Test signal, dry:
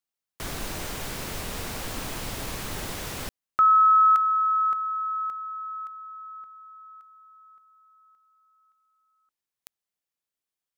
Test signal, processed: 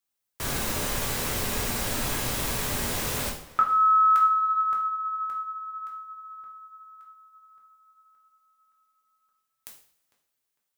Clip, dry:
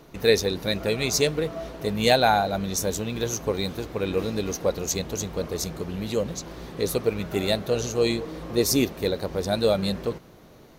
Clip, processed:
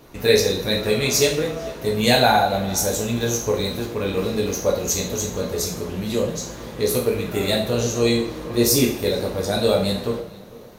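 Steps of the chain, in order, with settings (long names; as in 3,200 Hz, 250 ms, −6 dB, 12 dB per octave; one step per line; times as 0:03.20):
high-shelf EQ 9,200 Hz +5 dB
on a send: tape delay 451 ms, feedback 31%, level −19 dB, low-pass 2,400 Hz
on the sum: coupled-rooms reverb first 0.49 s, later 2.6 s, from −27 dB, DRR −2 dB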